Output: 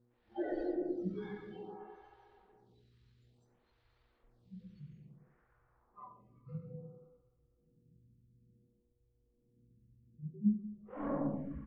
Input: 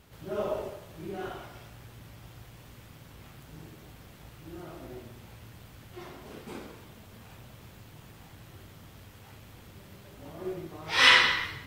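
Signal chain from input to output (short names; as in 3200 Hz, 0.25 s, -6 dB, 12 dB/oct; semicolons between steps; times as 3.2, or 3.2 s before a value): spectral noise reduction 29 dB; notches 50/100/150/200/250 Hz; in parallel at -1 dB: compressor 5:1, threshold -31 dBFS, peak gain reduction 15 dB; on the sum: echo with dull and thin repeats by turns 0.124 s, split 1700 Hz, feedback 74%, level -8.5 dB; hard clip -14 dBFS, distortion -13 dB; low-pass sweep 7100 Hz -> 410 Hz, 4.56–7.27; pitch shift -10 st; buzz 120 Hz, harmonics 4, -69 dBFS -8 dB/oct; on a send at -4 dB: reverb RT60 1.4 s, pre-delay 69 ms; on the sum: photocell phaser 0.58 Hz; gain +1.5 dB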